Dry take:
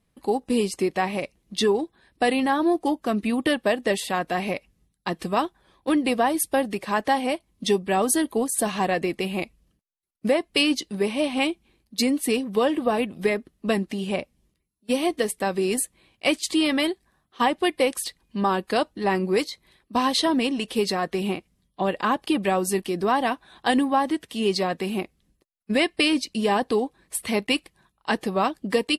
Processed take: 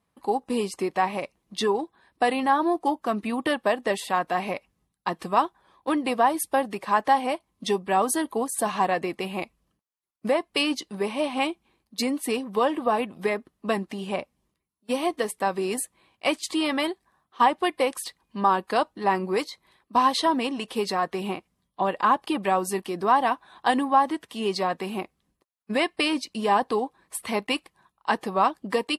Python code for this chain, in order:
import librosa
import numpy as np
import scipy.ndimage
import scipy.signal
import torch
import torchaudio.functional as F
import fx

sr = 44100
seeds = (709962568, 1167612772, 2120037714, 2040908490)

y = fx.highpass(x, sr, hz=89.0, slope=6)
y = fx.peak_eq(y, sr, hz=1000.0, db=9.5, octaves=1.1)
y = F.gain(torch.from_numpy(y), -4.5).numpy()